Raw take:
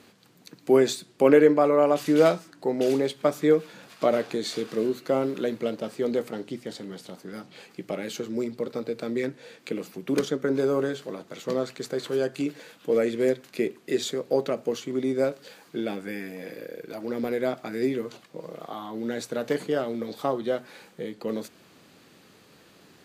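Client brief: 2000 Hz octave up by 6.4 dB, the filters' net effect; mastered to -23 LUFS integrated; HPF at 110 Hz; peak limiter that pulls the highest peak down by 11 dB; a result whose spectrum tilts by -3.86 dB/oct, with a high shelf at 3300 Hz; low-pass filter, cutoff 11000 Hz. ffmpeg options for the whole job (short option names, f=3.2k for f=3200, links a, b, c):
-af "highpass=110,lowpass=11k,equalizer=f=2k:t=o:g=9,highshelf=f=3.3k:g=-3.5,volume=5.5dB,alimiter=limit=-9.5dB:level=0:latency=1"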